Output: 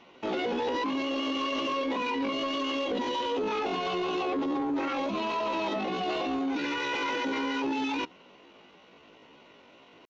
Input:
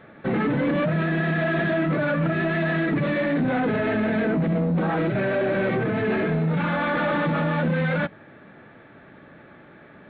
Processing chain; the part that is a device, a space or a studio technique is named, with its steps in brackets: chipmunk voice (pitch shift +9 st); trim -7 dB

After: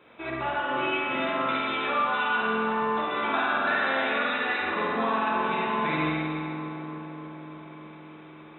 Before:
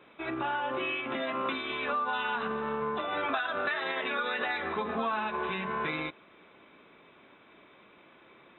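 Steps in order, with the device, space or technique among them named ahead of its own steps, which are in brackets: dub delay into a spring reverb (filtered feedback delay 296 ms, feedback 78%, low-pass 2.5 kHz, level -11 dB; spring tank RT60 1.9 s, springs 45 ms, chirp 25 ms, DRR -4 dB)

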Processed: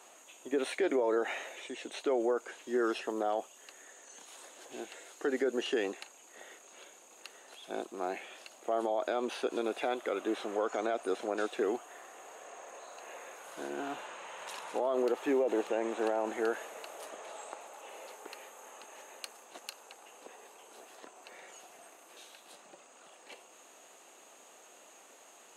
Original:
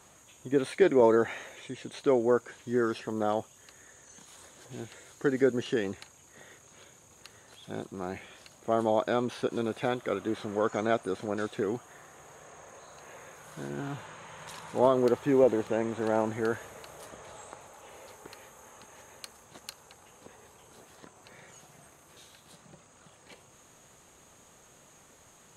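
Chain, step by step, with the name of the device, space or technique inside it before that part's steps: laptop speaker (high-pass 290 Hz 24 dB/octave; peaking EQ 710 Hz +5 dB 0.49 oct; peaking EQ 2.7 kHz +6 dB 0.25 oct; peak limiter -22 dBFS, peak gain reduction 13 dB)

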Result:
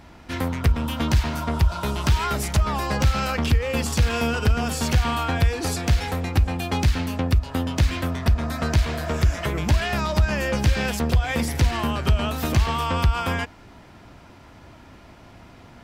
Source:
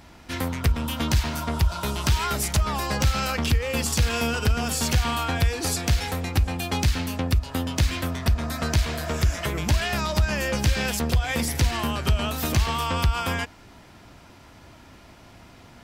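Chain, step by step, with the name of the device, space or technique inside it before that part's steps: behind a face mask (treble shelf 3.4 kHz -7.5 dB); trim +2.5 dB

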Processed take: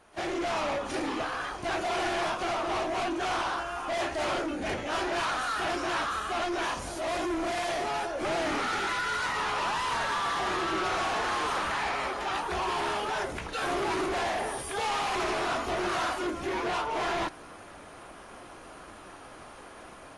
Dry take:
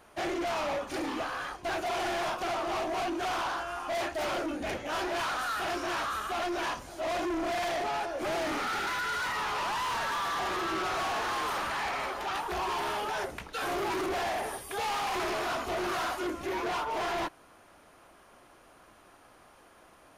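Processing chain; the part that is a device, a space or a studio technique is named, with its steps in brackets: 6.65–8.12 s: treble shelf 11 kHz +12 dB; low-bitrate web radio (level rider gain up to 10.5 dB; peak limiter -26.5 dBFS, peak gain reduction 10.5 dB; trim -2 dB; AAC 32 kbps 24 kHz)

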